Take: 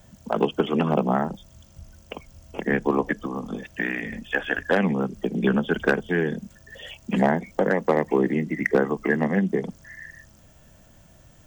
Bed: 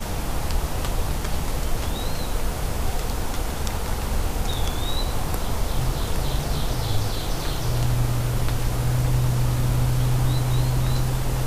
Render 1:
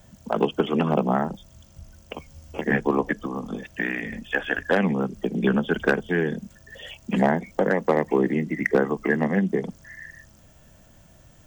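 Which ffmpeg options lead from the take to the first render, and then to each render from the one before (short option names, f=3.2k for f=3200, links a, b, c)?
-filter_complex "[0:a]asettb=1/sr,asplit=3[a][b][c];[a]atrim=end=2.154[d];[b]atrim=start=2.15:end=2.81,asetpts=PTS-STARTPTS,afade=t=in:d=0.004:c=qsin,afade=t=out:st=0.656:d=0.004:c=qsin,asplit=2[e][f];[f]adelay=13,volume=-3.5dB[g];[e][g]amix=inputs=2:normalize=0,atrim=end_sample=29106[h];[c]atrim=start=2.806[i];[d][h]acrossfade=d=0.004:c1=hsin:c2=qsin[j];[j][i]acrossfade=d=0.004:c1=qsin:c2=hsin"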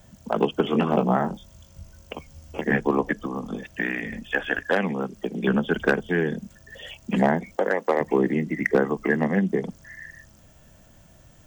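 -filter_complex "[0:a]asettb=1/sr,asplit=3[a][b][c];[a]atrim=end=0.624[d];[b]atrim=start=0.62:end=2.13,asetpts=PTS-STARTPTS,afade=t=in:d=0.004:c=qsin,afade=t=out:st=1.506:d=0.004:c=qsin,asplit=2[e][f];[f]adelay=22,volume=-6.5dB[g];[e][g]amix=inputs=2:normalize=0,atrim=end_sample=66591[h];[c]atrim=start=2.126[i];[d][h]acrossfade=d=0.004:c1=hsin:c2=qsin[j];[j][i]acrossfade=d=0.004:c1=qsin:c2=hsin,asettb=1/sr,asplit=3[k][l][m];[k]atrim=end=4.594[n];[l]atrim=start=4.59:end=5.48,asetpts=PTS-STARTPTS,afade=t=in:d=0.004:c=qsin,afade=t=out:st=0.886:d=0.004:c=qsin,lowshelf=f=240:g=-8[o];[m]atrim=start=5.476[p];[n][o]acrossfade=d=0.004:c1=hsin:c2=qsin[q];[q][p]acrossfade=d=0.004:c1=qsin:c2=hsin,asettb=1/sr,asplit=3[r][s][t];[r]atrim=end=7.564[u];[s]atrim=start=7.56:end=8.01,asetpts=PTS-STARTPTS,afade=t=in:d=0.004:c=qsin,afade=t=out:st=0.446:d=0.004:c=qsin,highpass=370[v];[t]atrim=start=8.006[w];[u][v]acrossfade=d=0.004:c1=hsin:c2=qsin[x];[x][w]acrossfade=d=0.004:c1=qsin:c2=hsin"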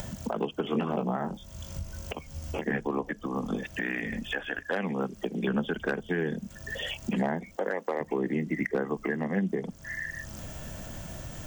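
-af "acompressor=mode=upward:threshold=-27dB:ratio=2.5,alimiter=limit=-19dB:level=0:latency=1:release=319"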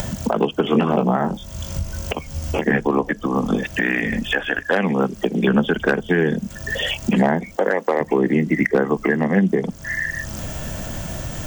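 -af "volume=11.5dB"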